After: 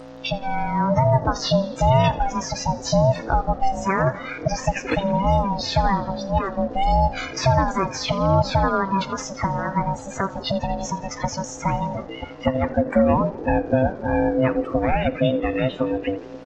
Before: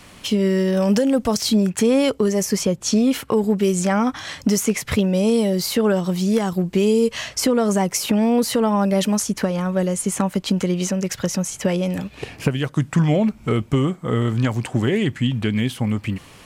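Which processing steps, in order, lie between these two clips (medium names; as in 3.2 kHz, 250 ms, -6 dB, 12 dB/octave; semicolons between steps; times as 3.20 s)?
one-bit delta coder 32 kbps, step -25.5 dBFS; spectral noise reduction 27 dB; in parallel at -1.5 dB: compression, threshold -29 dBFS, peak gain reduction 14.5 dB; on the sum: mains buzz 120 Hz, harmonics 13, -39 dBFS -7 dB/octave; on a send: frequency-shifting echo 83 ms, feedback 65%, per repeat -49 Hz, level -18 dB; on the sum: ring modulator 390 Hz; trim +2 dB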